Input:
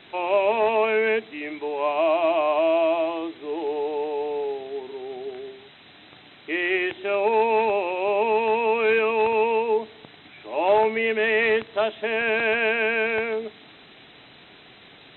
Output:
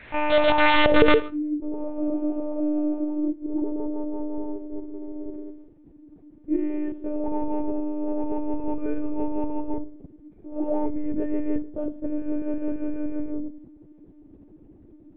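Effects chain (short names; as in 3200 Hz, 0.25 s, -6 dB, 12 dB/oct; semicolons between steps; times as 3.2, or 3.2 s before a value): added harmonics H 6 -27 dB, 8 -20 dB, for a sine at -8.5 dBFS; low-pass sweep 2000 Hz -> 290 Hz, 0.35–1.32; wrapped overs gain 11 dB; reverb RT60 0.50 s, pre-delay 44 ms, DRR 14.5 dB; monotone LPC vocoder at 8 kHz 300 Hz; gain +1.5 dB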